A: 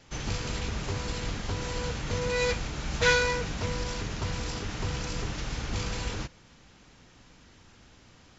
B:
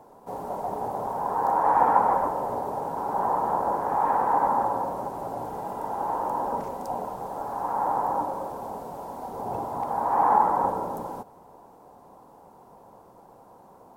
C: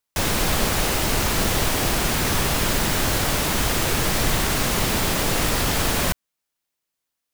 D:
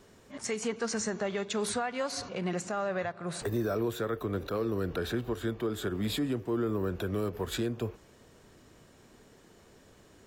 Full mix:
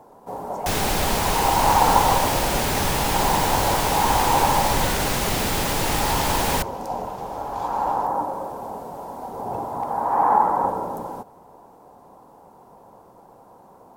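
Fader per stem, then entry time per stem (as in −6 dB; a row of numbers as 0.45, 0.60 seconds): −13.0, +2.5, −2.0, −17.5 decibels; 1.80, 0.00, 0.50, 0.10 seconds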